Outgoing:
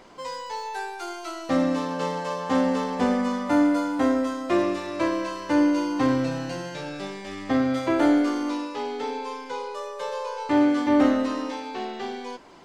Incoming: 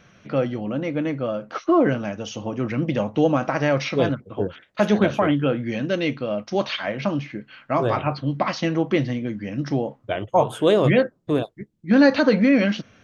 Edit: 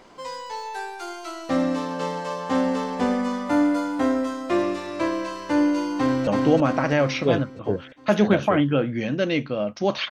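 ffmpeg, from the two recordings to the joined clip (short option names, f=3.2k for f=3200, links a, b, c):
-filter_complex "[0:a]apad=whole_dur=10.1,atrim=end=10.1,atrim=end=6.272[a];[1:a]atrim=start=2.978:end=6.81[b];[a][b]acrossfade=d=0.004:c1=hsin:c2=hsin,asplit=2[c][d];[d]afade=t=in:st=5.98:d=0.01,afade=t=out:st=6.27:d=0.01,aecho=0:1:330|660|990|1320|1650|1980|2310|2640:0.794328|0.436881|0.240284|0.132156|0.072686|0.0399773|0.0219875|0.0120931[e];[c][e]amix=inputs=2:normalize=0"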